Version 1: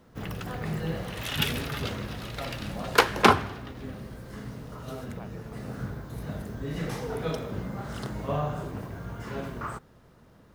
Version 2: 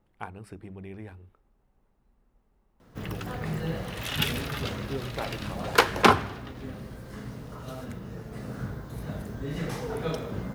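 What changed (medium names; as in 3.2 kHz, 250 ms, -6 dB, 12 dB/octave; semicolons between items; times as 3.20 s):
speech +11.5 dB; background: entry +2.80 s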